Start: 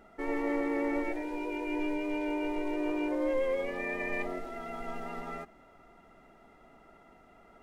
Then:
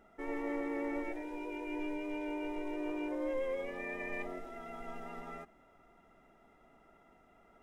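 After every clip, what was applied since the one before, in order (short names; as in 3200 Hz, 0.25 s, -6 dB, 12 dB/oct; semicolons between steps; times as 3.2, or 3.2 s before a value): notch 4400 Hz, Q 7.8; gain -6 dB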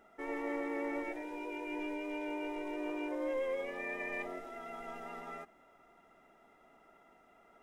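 low shelf 190 Hz -12 dB; gain +2 dB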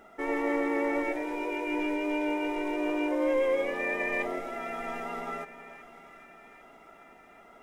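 split-band echo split 1100 Hz, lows 0.325 s, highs 0.796 s, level -15 dB; gain +9 dB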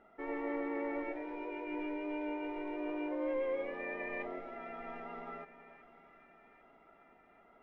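air absorption 300 m; gain -8 dB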